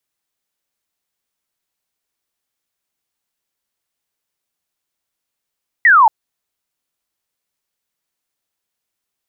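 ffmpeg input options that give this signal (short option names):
-f lavfi -i "aevalsrc='0.531*clip(t/0.002,0,1)*clip((0.23-t)/0.002,0,1)*sin(2*PI*2000*0.23/log(830/2000)*(exp(log(830/2000)*t/0.23)-1))':d=0.23:s=44100"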